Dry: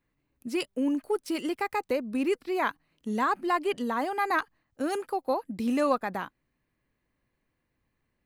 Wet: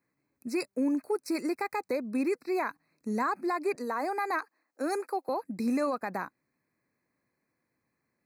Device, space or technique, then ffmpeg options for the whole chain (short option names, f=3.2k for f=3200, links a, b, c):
PA system with an anti-feedback notch: -filter_complex "[0:a]highpass=150,asuperstop=centerf=3200:order=20:qfactor=2.5,alimiter=limit=-21.5dB:level=0:latency=1:release=66,asettb=1/sr,asplit=3[a][b][c];[a]atrim=end=3.754[d];[b]atrim=start=3.75:end=5.29,asetpts=PTS-STARTPTS,afade=t=in:d=0.004:c=qsin,afade=t=out:st=1.536:d=0.004:c=qsin,highpass=f=280:w=0.5412,highpass=f=280:w=1.3066[e];[c]atrim=start=5.286[f];[d][e]acrossfade=d=0.004:c1=hsin:c2=qsin[g];[g][f]acrossfade=d=0.004:c1=qsin:c2=hsin"